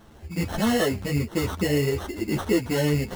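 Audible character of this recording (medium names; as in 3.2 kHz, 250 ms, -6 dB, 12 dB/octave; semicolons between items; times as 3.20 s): aliases and images of a low sample rate 2.4 kHz, jitter 0%; a shimmering, thickened sound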